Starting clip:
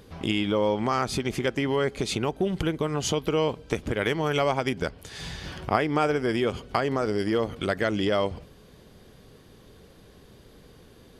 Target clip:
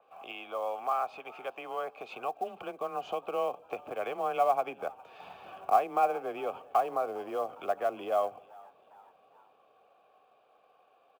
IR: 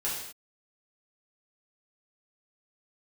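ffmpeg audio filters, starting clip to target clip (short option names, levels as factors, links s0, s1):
-filter_complex "[0:a]acrossover=split=470 2900:gain=0.2 1 0.251[s0][s1][s2];[s0][s1][s2]amix=inputs=3:normalize=0,acrossover=split=400[s3][s4];[s3]dynaudnorm=f=240:g=21:m=3.98[s5];[s5][s4]amix=inputs=2:normalize=0,asoftclip=type=tanh:threshold=0.299,asplit=3[s6][s7][s8];[s6]bandpass=f=730:t=q:w=8,volume=1[s9];[s7]bandpass=f=1090:t=q:w=8,volume=0.501[s10];[s8]bandpass=f=2440:t=q:w=8,volume=0.355[s11];[s9][s10][s11]amix=inputs=3:normalize=0,acrusher=bits=7:mode=log:mix=0:aa=0.000001,afreqshift=19,asplit=2[s12][s13];[s13]asplit=3[s14][s15][s16];[s14]adelay=406,afreqshift=85,volume=0.0631[s17];[s15]adelay=812,afreqshift=170,volume=0.0324[s18];[s16]adelay=1218,afreqshift=255,volume=0.0164[s19];[s17][s18][s19]amix=inputs=3:normalize=0[s20];[s12][s20]amix=inputs=2:normalize=0,adynamicequalizer=threshold=0.00251:dfrequency=3600:dqfactor=0.7:tfrequency=3600:tqfactor=0.7:attack=5:release=100:ratio=0.375:range=2:mode=cutabove:tftype=highshelf,volume=1.88"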